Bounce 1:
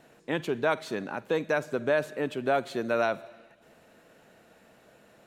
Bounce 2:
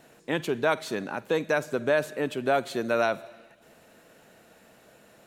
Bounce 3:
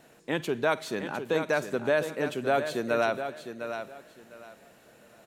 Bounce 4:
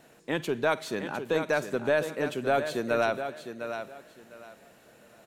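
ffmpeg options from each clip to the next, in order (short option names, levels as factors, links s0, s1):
-af "highshelf=f=5300:g=6.5,volume=1.19"
-af "aecho=1:1:706|1412|2118:0.355|0.0781|0.0172,volume=0.841"
-af "aeval=exprs='0.282*(cos(1*acos(clip(val(0)/0.282,-1,1)))-cos(1*PI/2))+0.00631*(cos(4*acos(clip(val(0)/0.282,-1,1)))-cos(4*PI/2))':c=same"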